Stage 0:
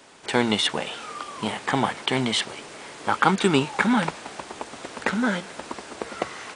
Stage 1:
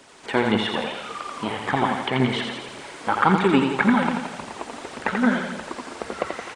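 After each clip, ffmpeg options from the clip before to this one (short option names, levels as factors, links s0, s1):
-filter_complex "[0:a]aecho=1:1:85|170|255|340|425|510|595:0.562|0.304|0.164|0.0885|0.0478|0.0258|0.0139,aphaser=in_gain=1:out_gain=1:delay=4.5:decay=0.38:speed=1.8:type=triangular,acrossover=split=2900[s0][s1];[s1]acompressor=threshold=0.00708:ratio=4:attack=1:release=60[s2];[s0][s2]amix=inputs=2:normalize=0"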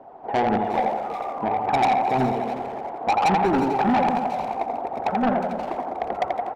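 -filter_complex "[0:a]lowpass=f=750:t=q:w=7.7,asoftclip=type=tanh:threshold=0.158,asplit=2[s0][s1];[s1]adelay=360,highpass=300,lowpass=3400,asoftclip=type=hard:threshold=0.0501,volume=0.447[s2];[s0][s2]amix=inputs=2:normalize=0"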